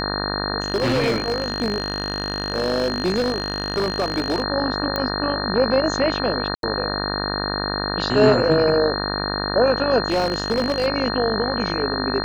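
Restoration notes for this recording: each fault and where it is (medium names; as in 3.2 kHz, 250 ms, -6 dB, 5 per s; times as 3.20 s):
buzz 50 Hz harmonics 37 -26 dBFS
whine 4.2 kHz -28 dBFS
0.60–4.42 s: clipped -16 dBFS
4.96 s: pop -9 dBFS
6.55–6.63 s: dropout 82 ms
10.08–10.87 s: clipped -15 dBFS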